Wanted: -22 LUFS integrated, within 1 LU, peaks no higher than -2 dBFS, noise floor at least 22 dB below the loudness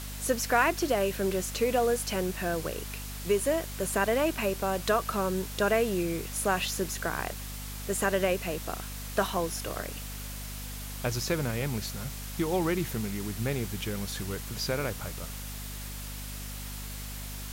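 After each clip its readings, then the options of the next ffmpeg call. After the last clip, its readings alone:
hum 50 Hz; harmonics up to 250 Hz; hum level -38 dBFS; noise floor -39 dBFS; noise floor target -53 dBFS; loudness -30.5 LUFS; peak -11.0 dBFS; loudness target -22.0 LUFS
-> -af "bandreject=f=50:t=h:w=4,bandreject=f=100:t=h:w=4,bandreject=f=150:t=h:w=4,bandreject=f=200:t=h:w=4,bandreject=f=250:t=h:w=4"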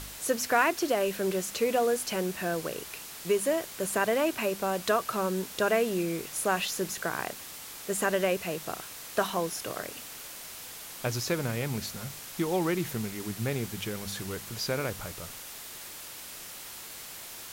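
hum none; noise floor -44 dBFS; noise floor target -53 dBFS
-> -af "afftdn=nr=9:nf=-44"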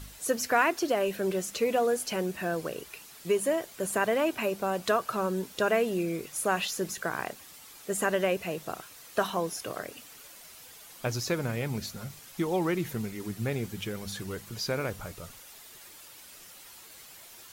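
noise floor -50 dBFS; noise floor target -53 dBFS
-> -af "afftdn=nr=6:nf=-50"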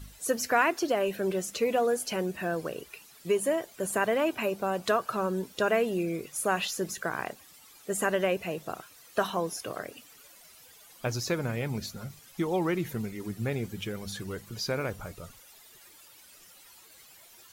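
noise floor -55 dBFS; loudness -30.5 LUFS; peak -11.5 dBFS; loudness target -22.0 LUFS
-> -af "volume=8.5dB"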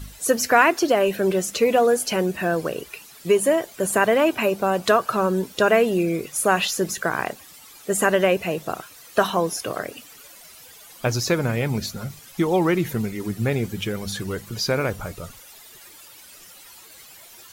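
loudness -22.0 LUFS; peak -3.0 dBFS; noise floor -46 dBFS

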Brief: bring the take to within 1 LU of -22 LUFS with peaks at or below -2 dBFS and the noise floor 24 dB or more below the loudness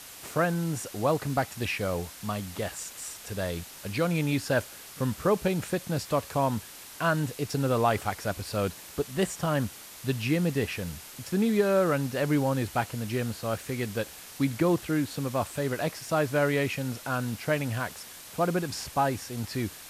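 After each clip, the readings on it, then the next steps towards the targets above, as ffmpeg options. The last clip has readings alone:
noise floor -46 dBFS; noise floor target -54 dBFS; loudness -29.5 LUFS; peak -12.0 dBFS; loudness target -22.0 LUFS
-> -af "afftdn=nr=8:nf=-46"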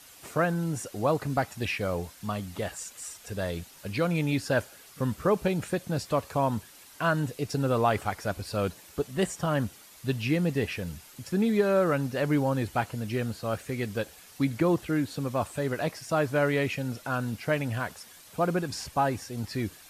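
noise floor -52 dBFS; noise floor target -54 dBFS
-> -af "afftdn=nr=6:nf=-52"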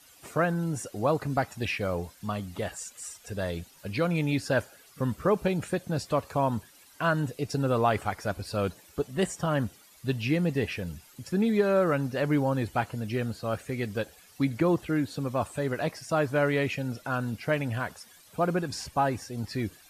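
noise floor -56 dBFS; loudness -29.5 LUFS; peak -12.5 dBFS; loudness target -22.0 LUFS
-> -af "volume=7.5dB"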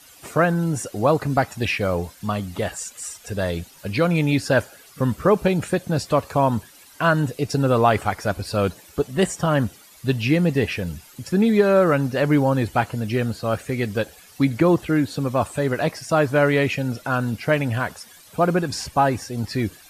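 loudness -22.0 LUFS; peak -5.0 dBFS; noise floor -48 dBFS

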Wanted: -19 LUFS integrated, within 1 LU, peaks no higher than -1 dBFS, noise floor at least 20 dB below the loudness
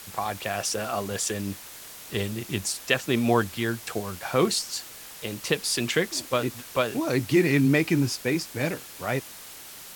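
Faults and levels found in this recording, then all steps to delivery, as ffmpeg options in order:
noise floor -44 dBFS; noise floor target -47 dBFS; loudness -26.5 LUFS; peak -7.0 dBFS; loudness target -19.0 LUFS
-> -af "afftdn=nr=6:nf=-44"
-af "volume=7.5dB,alimiter=limit=-1dB:level=0:latency=1"

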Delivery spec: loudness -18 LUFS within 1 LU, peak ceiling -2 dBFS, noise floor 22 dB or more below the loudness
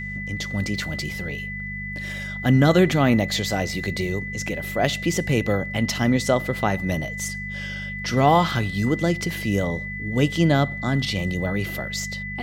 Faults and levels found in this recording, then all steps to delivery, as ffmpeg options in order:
hum 50 Hz; harmonics up to 200 Hz; hum level -32 dBFS; steady tone 2000 Hz; tone level -31 dBFS; loudness -23.0 LUFS; peak -4.5 dBFS; loudness target -18.0 LUFS
-> -af "bandreject=f=50:t=h:w=4,bandreject=f=100:t=h:w=4,bandreject=f=150:t=h:w=4,bandreject=f=200:t=h:w=4"
-af "bandreject=f=2k:w=30"
-af "volume=5dB,alimiter=limit=-2dB:level=0:latency=1"

